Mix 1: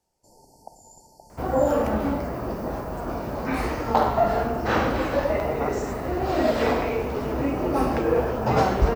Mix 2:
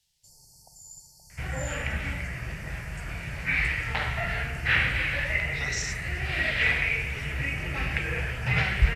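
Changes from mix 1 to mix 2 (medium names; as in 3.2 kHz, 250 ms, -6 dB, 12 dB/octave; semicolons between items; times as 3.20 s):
speech: add high-order bell 4.1 kHz +10 dB 1.2 oct; second sound: add resonant low-pass 2.4 kHz, resonance Q 2; master: add FFT filter 160 Hz 0 dB, 230 Hz -19 dB, 1.1 kHz -16 dB, 1.9 kHz +6 dB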